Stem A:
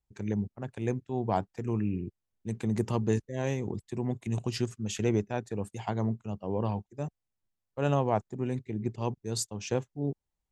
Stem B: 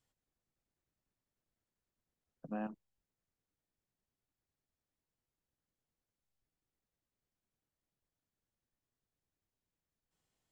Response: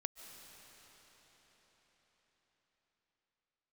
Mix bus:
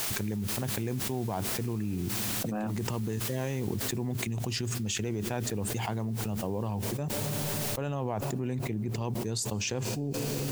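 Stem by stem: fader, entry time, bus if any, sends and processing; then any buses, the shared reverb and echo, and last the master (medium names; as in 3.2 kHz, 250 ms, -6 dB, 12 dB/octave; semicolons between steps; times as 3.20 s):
3.63 s -20.5 dB -> 4.02 s -12 dB -> 6.71 s -12 dB -> 7.17 s -2.5 dB, 0.00 s, send -14.5 dB, peaking EQ 550 Hz -2.5 dB 2.2 oct; peak limiter -23 dBFS, peak gain reduction 8 dB
-4.5 dB, 0.00 s, no send, none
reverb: on, RT60 5.3 s, pre-delay 105 ms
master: word length cut 12-bit, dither triangular; level flattener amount 100%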